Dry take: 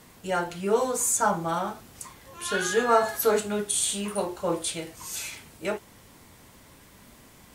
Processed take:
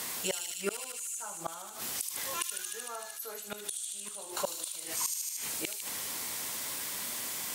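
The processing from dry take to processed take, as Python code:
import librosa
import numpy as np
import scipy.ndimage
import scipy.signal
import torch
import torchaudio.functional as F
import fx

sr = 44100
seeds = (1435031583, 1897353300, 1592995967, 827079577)

p1 = fx.highpass(x, sr, hz=610.0, slope=6)
p2 = fx.high_shelf(p1, sr, hz=3100.0, db=9.5)
p3 = fx.gate_flip(p2, sr, shuts_db=-22.0, range_db=-34)
p4 = p3 + fx.echo_wet_highpass(p3, sr, ms=76, feedback_pct=78, hz=3600.0, wet_db=-7.5, dry=0)
p5 = fx.env_flatten(p4, sr, amount_pct=50)
y = p5 * 10.0 ** (2.0 / 20.0)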